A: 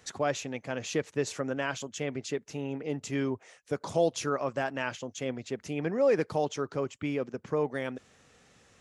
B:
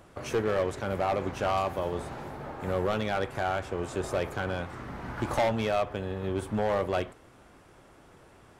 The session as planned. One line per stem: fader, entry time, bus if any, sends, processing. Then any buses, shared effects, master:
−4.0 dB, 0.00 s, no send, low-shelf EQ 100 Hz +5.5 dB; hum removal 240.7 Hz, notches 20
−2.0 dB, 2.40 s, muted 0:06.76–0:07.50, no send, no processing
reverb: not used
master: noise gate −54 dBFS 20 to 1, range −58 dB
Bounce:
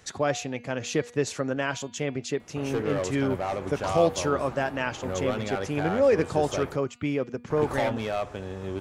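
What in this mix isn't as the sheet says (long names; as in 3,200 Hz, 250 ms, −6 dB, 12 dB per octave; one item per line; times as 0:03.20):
stem A −4.0 dB → +3.5 dB
master: missing noise gate −54 dBFS 20 to 1, range −58 dB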